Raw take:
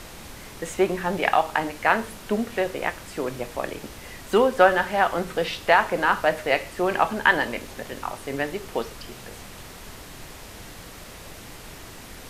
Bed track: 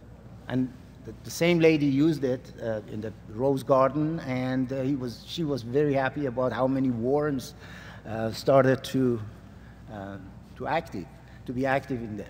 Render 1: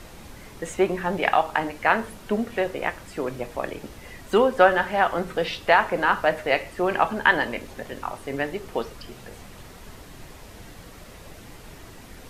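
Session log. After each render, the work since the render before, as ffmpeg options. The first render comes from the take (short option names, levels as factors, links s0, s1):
-af "afftdn=nr=6:nf=-42"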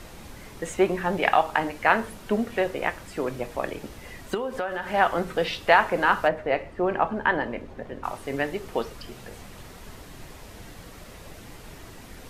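-filter_complex "[0:a]asettb=1/sr,asplit=3[s0][s1][s2];[s0]atrim=end=4.344[s3];[s1]atrim=start=4.34:end=4.94,asetpts=PTS-STARTPTS,afade=t=in:d=0.004:c=qsin,afade=t=out:st=0.596:d=0.004:c=qsin,acompressor=threshold=0.0447:ratio=4:attack=3.2:release=140:knee=1:detection=peak[s4];[s2]atrim=start=4.936[s5];[s3][s4]acrossfade=d=0.004:c1=hsin:c2=qsin[s6];[s6][s5]acrossfade=d=0.004:c1=qsin:c2=hsin,asplit=3[s7][s8][s9];[s7]afade=t=out:st=6.27:d=0.02[s10];[s8]lowpass=f=1000:p=1,afade=t=in:st=6.27:d=0.02,afade=t=out:st=8.03:d=0.02[s11];[s9]afade=t=in:st=8.03:d=0.02[s12];[s10][s11][s12]amix=inputs=3:normalize=0"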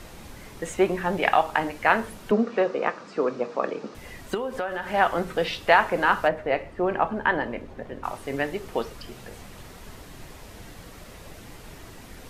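-filter_complex "[0:a]asettb=1/sr,asplit=3[s0][s1][s2];[s0]atrim=end=2.314[s3];[s1]atrim=start=2.31:end=3.95,asetpts=PTS-STARTPTS,afade=t=in:d=0.004:c=qsin,afade=t=out:st=1.636:d=0.004:c=qsin,highpass=f=170:w=0.5412,highpass=f=170:w=1.3066,equalizer=f=220:t=q:w=4:g=4,equalizer=f=470:t=q:w=4:g=7,equalizer=f=1200:t=q:w=4:g=8,equalizer=f=2000:t=q:w=4:g=-5,equalizer=f=3200:t=q:w=4:g=-6,lowpass=f=5900:w=0.5412,lowpass=f=5900:w=1.3066[s4];[s2]atrim=start=3.946[s5];[s3][s4]acrossfade=d=0.004:c1=hsin:c2=qsin[s6];[s6][s5]acrossfade=d=0.004:c1=qsin:c2=hsin"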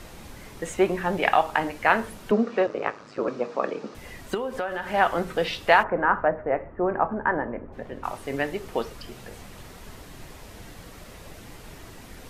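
-filter_complex "[0:a]asettb=1/sr,asplit=3[s0][s1][s2];[s0]atrim=end=2.664[s3];[s1]atrim=start=2.66:end=3.28,asetpts=PTS-STARTPTS,afade=t=in:d=0.004:c=qsin,afade=t=out:st=0.616:d=0.004:c=qsin,aeval=exprs='val(0)*sin(2*PI*53*n/s)':c=same[s4];[s2]atrim=start=3.276[s5];[s3][s4]acrossfade=d=0.004:c1=hsin:c2=qsin[s6];[s6][s5]acrossfade=d=0.004:c1=qsin:c2=hsin,asplit=3[s7][s8][s9];[s7]afade=t=out:st=5.82:d=0.02[s10];[s8]lowpass=f=1700:w=0.5412,lowpass=f=1700:w=1.3066,afade=t=in:st=5.82:d=0.02,afade=t=out:st=7.72:d=0.02[s11];[s9]afade=t=in:st=7.72:d=0.02[s12];[s10][s11][s12]amix=inputs=3:normalize=0"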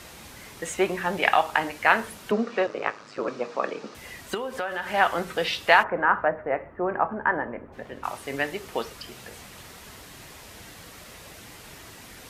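-af "highpass=53,tiltshelf=f=970:g=-4"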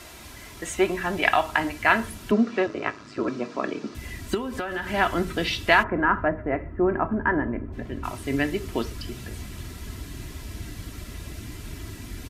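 -af "asubboost=boost=6.5:cutoff=250,aecho=1:1:3:0.48"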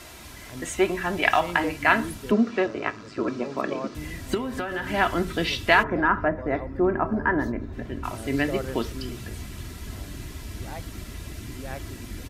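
-filter_complex "[1:a]volume=0.224[s0];[0:a][s0]amix=inputs=2:normalize=0"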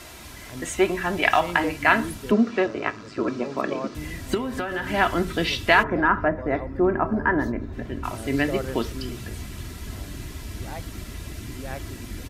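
-af "volume=1.19,alimiter=limit=0.794:level=0:latency=1"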